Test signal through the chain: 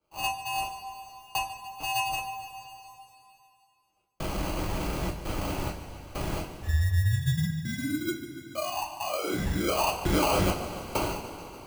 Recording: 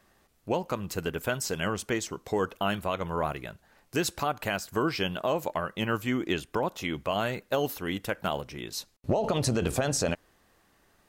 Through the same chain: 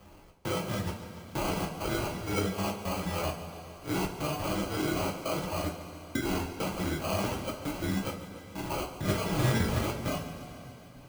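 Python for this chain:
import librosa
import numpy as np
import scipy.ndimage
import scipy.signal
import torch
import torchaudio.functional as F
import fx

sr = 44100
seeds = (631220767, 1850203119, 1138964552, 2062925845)

p1 = fx.phase_scramble(x, sr, seeds[0], window_ms=200)
p2 = fx.dereverb_blind(p1, sr, rt60_s=0.53)
p3 = scipy.signal.sosfilt(scipy.signal.butter(2, 8700.0, 'lowpass', fs=sr, output='sos'), p2)
p4 = fx.peak_eq(p3, sr, hz=740.0, db=-12.5, octaves=2.6)
p5 = fx.notch(p4, sr, hz=360.0, q=12.0)
p6 = fx.level_steps(p5, sr, step_db=11)
p7 = p5 + (p6 * 10.0 ** (1.0 / 20.0))
p8 = fx.sample_hold(p7, sr, seeds[1], rate_hz=1800.0, jitter_pct=0)
p9 = fx.step_gate(p8, sr, bpm=100, pattern='xx.xxx...xx.xxxx', floor_db=-60.0, edge_ms=4.5)
p10 = p9 + fx.echo_feedback(p9, sr, ms=144, feedback_pct=58, wet_db=-15.5, dry=0)
p11 = fx.rev_double_slope(p10, sr, seeds[2], early_s=0.26, late_s=2.3, knee_db=-19, drr_db=-1.5)
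y = fx.band_squash(p11, sr, depth_pct=40)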